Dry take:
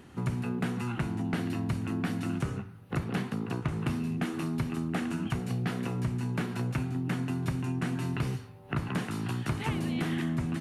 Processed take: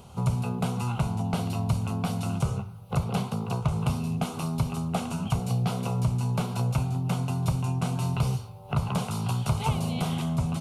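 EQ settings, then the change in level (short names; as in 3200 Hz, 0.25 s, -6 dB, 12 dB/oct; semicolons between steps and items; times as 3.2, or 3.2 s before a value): fixed phaser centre 740 Hz, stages 4; +8.5 dB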